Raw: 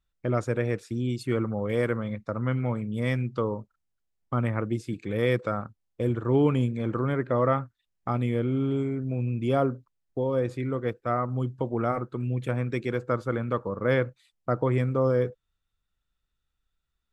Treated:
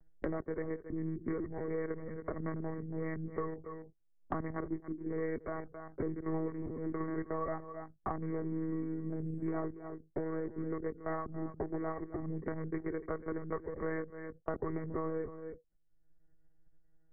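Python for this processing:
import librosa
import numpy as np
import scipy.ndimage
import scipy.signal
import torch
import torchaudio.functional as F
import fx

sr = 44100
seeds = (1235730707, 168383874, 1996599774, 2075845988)

y = fx.wiener(x, sr, points=41)
y = scipy.signal.sosfilt(scipy.signal.cheby1(8, 1.0, 2100.0, 'lowpass', fs=sr, output='sos'), y)
y = fx.low_shelf(y, sr, hz=220.0, db=-6.5)
y = fx.notch(y, sr, hz=1400.0, q=8.1)
y = y + 0.74 * np.pad(y, (int(2.7 * sr / 1000.0), 0))[:len(y)]
y = y + 10.0 ** (-15.0 / 20.0) * np.pad(y, (int(276 * sr / 1000.0), 0))[:len(y)]
y = fx.lpc_monotone(y, sr, seeds[0], pitch_hz=160.0, order=16)
y = fx.band_squash(y, sr, depth_pct=100)
y = y * librosa.db_to_amplitude(-8.5)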